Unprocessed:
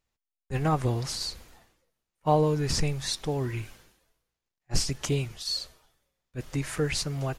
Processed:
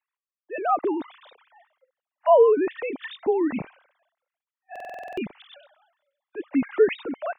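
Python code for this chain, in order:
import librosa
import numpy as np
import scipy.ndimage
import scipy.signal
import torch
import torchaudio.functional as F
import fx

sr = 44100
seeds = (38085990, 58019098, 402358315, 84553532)

y = fx.sine_speech(x, sr)
y = fx.high_shelf(y, sr, hz=2200.0, db=-10.5)
y = fx.buffer_glitch(y, sr, at_s=(4.71,), block=2048, repeats=9)
y = y * librosa.db_to_amplitude(5.0)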